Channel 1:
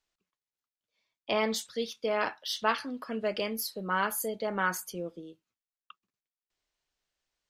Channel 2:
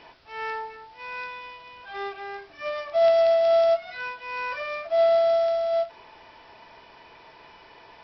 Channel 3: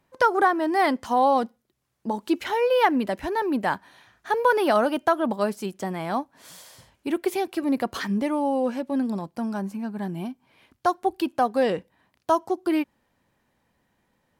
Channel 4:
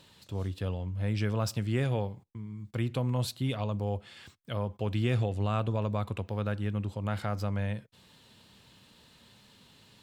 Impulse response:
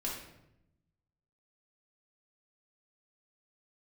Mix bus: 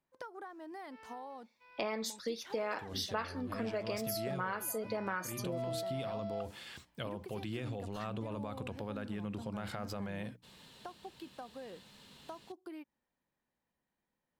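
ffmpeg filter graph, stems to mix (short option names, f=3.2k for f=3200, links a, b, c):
-filter_complex "[0:a]equalizer=f=3.1k:w=7.8:g=-12.5,adelay=500,volume=2.5dB[a];[1:a]agate=range=-17dB:threshold=-42dB:ratio=16:detection=peak,adelay=600,volume=-14.5dB,afade=t=in:st=3.83:d=0.35:silence=0.334965[b];[2:a]acompressor=threshold=-26dB:ratio=10,volume=-17.5dB,asplit=2[c][d];[3:a]bandreject=f=60:t=h:w=6,bandreject=f=120:t=h:w=6,bandreject=f=180:t=h:w=6,bandreject=f=240:t=h:w=6,bandreject=f=300:t=h:w=6,alimiter=level_in=2dB:limit=-24dB:level=0:latency=1:release=25,volume=-2dB,adelay=2500,volume=1.5dB[e];[d]apad=whole_len=552145[f];[e][f]sidechaincompress=threshold=-44dB:ratio=8:attack=27:release=1340[g];[a][b][c][g]amix=inputs=4:normalize=0,equalizer=f=100:w=5.4:g=-12,acompressor=threshold=-35dB:ratio=4"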